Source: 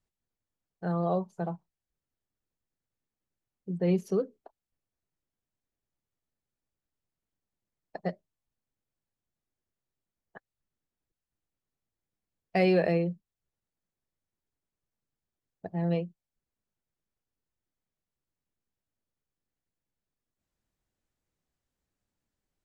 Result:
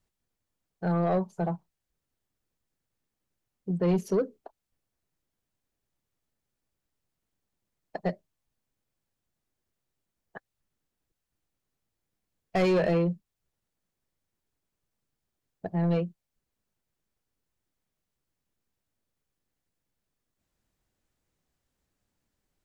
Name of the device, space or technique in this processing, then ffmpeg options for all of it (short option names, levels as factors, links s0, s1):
saturation between pre-emphasis and de-emphasis: -af "highshelf=f=2100:g=10.5,asoftclip=type=tanh:threshold=0.0596,highshelf=f=2100:g=-10.5,volume=1.88"